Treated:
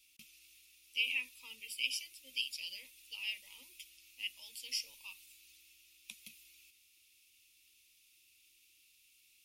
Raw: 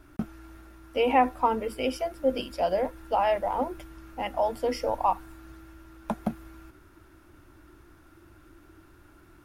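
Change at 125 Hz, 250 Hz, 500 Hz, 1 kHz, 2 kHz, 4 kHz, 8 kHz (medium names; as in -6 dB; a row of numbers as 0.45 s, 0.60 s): under -35 dB, -38.0 dB, under -40 dB, under -40 dB, -2.0 dB, +3.0 dB, +3.0 dB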